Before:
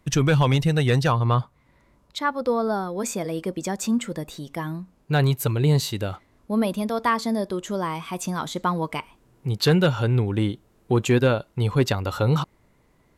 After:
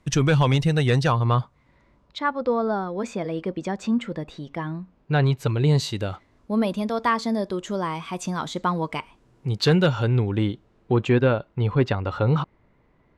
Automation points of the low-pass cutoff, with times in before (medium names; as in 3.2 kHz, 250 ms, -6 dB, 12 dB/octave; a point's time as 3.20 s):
1.30 s 8.8 kHz
2.32 s 3.4 kHz
5.22 s 3.4 kHz
5.80 s 7.1 kHz
9.92 s 7.1 kHz
11.26 s 2.7 kHz